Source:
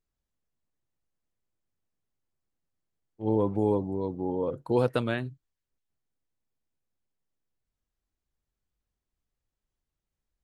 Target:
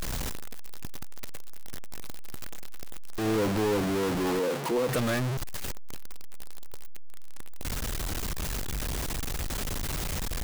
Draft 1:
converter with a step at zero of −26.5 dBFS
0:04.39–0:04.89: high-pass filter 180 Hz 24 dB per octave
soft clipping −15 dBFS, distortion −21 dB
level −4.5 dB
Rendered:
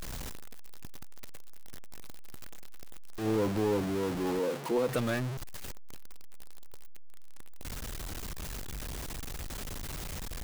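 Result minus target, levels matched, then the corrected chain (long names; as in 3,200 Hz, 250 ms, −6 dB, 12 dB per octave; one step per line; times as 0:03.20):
converter with a step at zero: distortion −5 dB
converter with a step at zero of −19 dBFS
0:04.39–0:04.89: high-pass filter 180 Hz 24 dB per octave
soft clipping −15 dBFS, distortion −21 dB
level −4.5 dB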